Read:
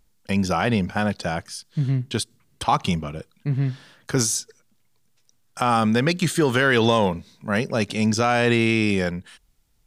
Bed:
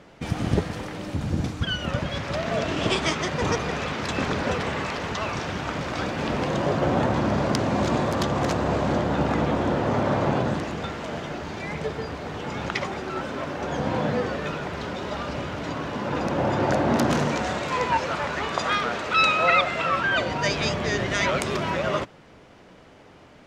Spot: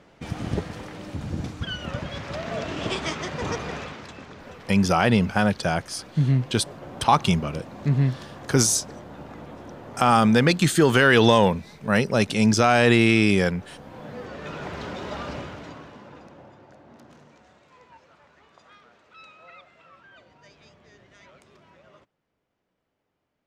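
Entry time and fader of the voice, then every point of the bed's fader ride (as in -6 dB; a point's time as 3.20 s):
4.40 s, +2.0 dB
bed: 3.76 s -4.5 dB
4.24 s -17.5 dB
13.90 s -17.5 dB
14.66 s -2.5 dB
15.32 s -2.5 dB
16.67 s -29 dB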